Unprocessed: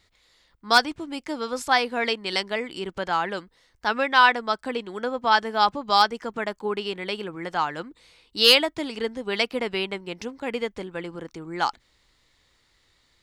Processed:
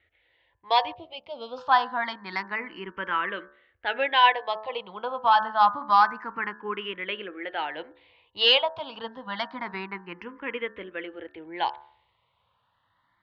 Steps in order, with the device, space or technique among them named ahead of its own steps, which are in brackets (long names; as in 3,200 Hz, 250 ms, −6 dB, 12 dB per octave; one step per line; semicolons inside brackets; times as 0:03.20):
low-pass that shuts in the quiet parts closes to 2,500 Hz, open at −20 dBFS
barber-pole phaser into a guitar amplifier (frequency shifter mixed with the dry sound +0.27 Hz; soft clipping −8.5 dBFS, distortion −18 dB; loudspeaker in its box 77–3,400 Hz, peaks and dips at 150 Hz −7 dB, 240 Hz −7 dB, 400 Hz −5 dB, 1,000 Hz +8 dB, 1,800 Hz +4 dB, 3,000 Hz +4 dB)
hum removal 72.22 Hz, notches 25
0:00.94–0:01.58: flat-topped bell 1,300 Hz −15 dB 1.3 octaves